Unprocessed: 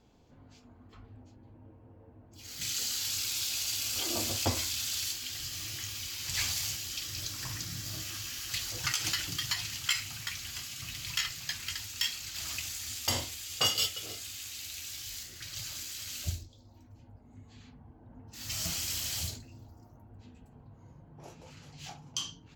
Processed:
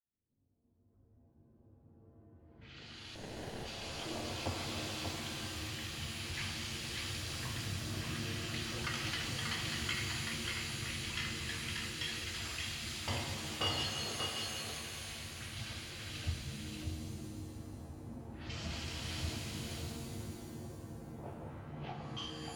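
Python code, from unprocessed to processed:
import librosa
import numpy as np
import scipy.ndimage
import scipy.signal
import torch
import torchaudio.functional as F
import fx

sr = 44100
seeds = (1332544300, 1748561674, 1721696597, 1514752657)

p1 = fx.fade_in_head(x, sr, length_s=7.11)
p2 = fx.peak_eq(p1, sr, hz=6700.0, db=-8.0, octaves=1.4)
p3 = fx.over_compress(p2, sr, threshold_db=-43.0, ratio=-1.0)
p4 = p2 + (p3 * 10.0 ** (-2.0 / 20.0))
p5 = fx.env_lowpass(p4, sr, base_hz=380.0, full_db=-32.0)
p6 = fx.sample_hold(p5, sr, seeds[0], rate_hz=1200.0, jitter_pct=0, at=(3.15, 3.66))
p7 = fx.air_absorb(p6, sr, metres=130.0)
p8 = p7 + fx.echo_single(p7, sr, ms=587, db=-4.0, dry=0)
p9 = fx.rev_shimmer(p8, sr, seeds[1], rt60_s=2.4, semitones=7, shimmer_db=-2, drr_db=4.5)
y = p9 * 10.0 ** (-4.5 / 20.0)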